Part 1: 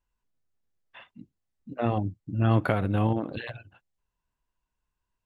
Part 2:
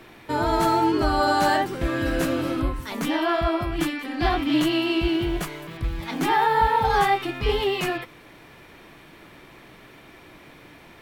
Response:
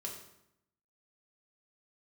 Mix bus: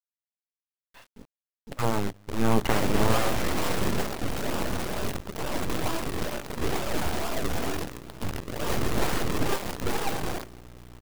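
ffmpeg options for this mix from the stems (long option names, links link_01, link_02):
-filter_complex "[0:a]highshelf=frequency=3100:gain=-9.5,volume=2dB,asplit=2[link_01][link_02];[link_02]volume=-20.5dB[link_03];[1:a]aeval=exprs='val(0)+0.0141*(sin(2*PI*60*n/s)+sin(2*PI*2*60*n/s)/2+sin(2*PI*3*60*n/s)/3+sin(2*PI*4*60*n/s)/4+sin(2*PI*5*60*n/s)/5)':channel_layout=same,lowpass=frequency=3300:poles=1,acrusher=samples=41:mix=1:aa=0.000001:lfo=1:lforange=41:lforate=2.2,adelay=2400,volume=-6.5dB,asplit=2[link_04][link_05];[link_05]volume=-4.5dB[link_06];[2:a]atrim=start_sample=2205[link_07];[link_03][link_06]amix=inputs=2:normalize=0[link_08];[link_08][link_07]afir=irnorm=-1:irlink=0[link_09];[link_01][link_04][link_09]amix=inputs=3:normalize=0,acrusher=bits=6:dc=4:mix=0:aa=0.000001,aeval=exprs='abs(val(0))':channel_layout=same"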